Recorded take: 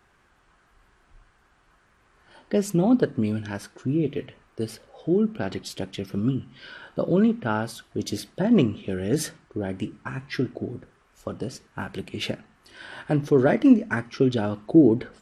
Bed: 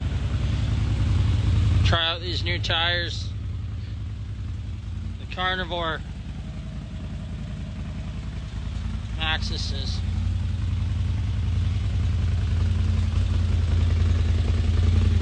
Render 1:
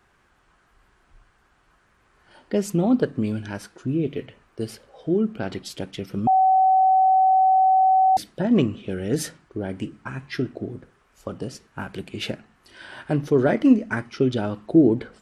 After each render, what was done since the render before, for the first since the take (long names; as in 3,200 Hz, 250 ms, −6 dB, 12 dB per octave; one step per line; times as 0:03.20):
0:06.27–0:08.17: beep over 758 Hz −13.5 dBFS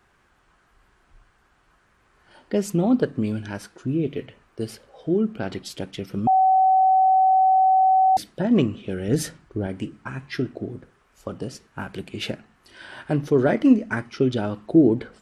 0:09.08–0:09.67: low-shelf EQ 130 Hz +9.5 dB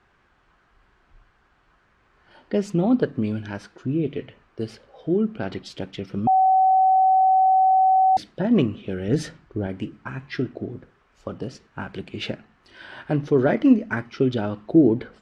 low-pass filter 4,800 Hz 12 dB per octave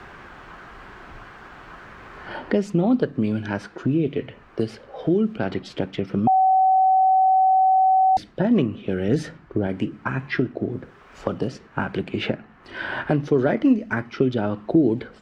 multiband upward and downward compressor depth 70%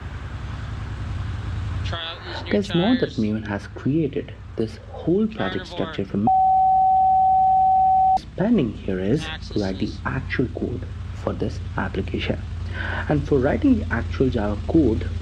mix in bed −7 dB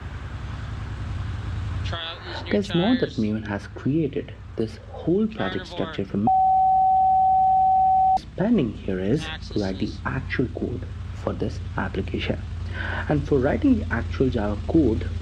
level −1.5 dB